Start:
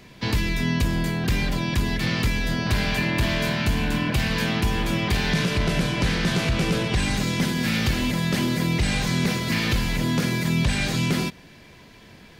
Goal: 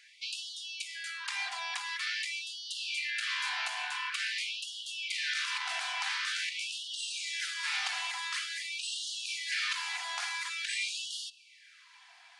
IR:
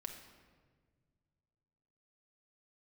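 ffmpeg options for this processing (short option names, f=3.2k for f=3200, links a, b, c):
-filter_complex "[0:a]asplit=2[a][b];[b]lowshelf=f=250:g=11[c];[1:a]atrim=start_sample=2205,afade=t=out:st=0.32:d=0.01,atrim=end_sample=14553,lowshelf=f=140:g=-3[d];[c][d]afir=irnorm=-1:irlink=0,volume=-10dB[e];[a][e]amix=inputs=2:normalize=0,aresample=22050,aresample=44100,afftfilt=real='re*gte(b*sr/1024,650*pow(2800/650,0.5+0.5*sin(2*PI*0.47*pts/sr)))':imag='im*gte(b*sr/1024,650*pow(2800/650,0.5+0.5*sin(2*PI*0.47*pts/sr)))':win_size=1024:overlap=0.75,volume=-6.5dB"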